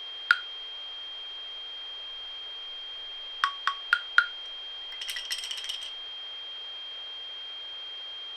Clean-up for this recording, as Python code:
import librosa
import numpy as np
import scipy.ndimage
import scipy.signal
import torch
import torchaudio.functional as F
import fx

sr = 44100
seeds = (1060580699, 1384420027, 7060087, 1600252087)

y = fx.notch(x, sr, hz=3200.0, q=30.0)
y = fx.noise_reduce(y, sr, print_start_s=7.23, print_end_s=7.73, reduce_db=30.0)